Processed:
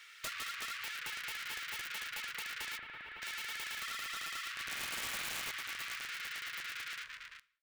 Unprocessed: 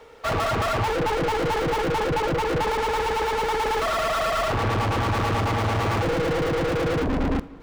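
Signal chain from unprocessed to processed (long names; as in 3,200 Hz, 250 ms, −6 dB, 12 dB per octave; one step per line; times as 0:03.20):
fade-out on the ending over 1.55 s
inverse Chebyshev high-pass filter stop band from 820 Hz, stop band 40 dB
downward compressor 16 to 1, threshold −41 dBFS, peak gain reduction 13.5 dB
0:04.62–0:05.51: flutter between parallel walls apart 8.7 metres, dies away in 0.94 s
wrap-around overflow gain 35.5 dB
0:02.78–0:03.22: high-frequency loss of the air 490 metres
level +3 dB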